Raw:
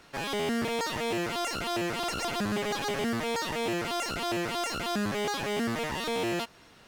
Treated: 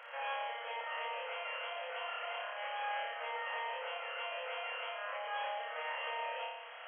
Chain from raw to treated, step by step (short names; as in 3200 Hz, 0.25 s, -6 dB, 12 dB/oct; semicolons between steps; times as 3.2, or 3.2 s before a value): compressor, threshold -42 dBFS, peak gain reduction 14 dB; limiter -41 dBFS, peak gain reduction 8 dB; flange 1.5 Hz, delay 5 ms, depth 9.8 ms, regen -72%; brick-wall FIR band-pass 460–3300 Hz; flutter echo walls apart 5 m, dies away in 0.92 s; gain +9.5 dB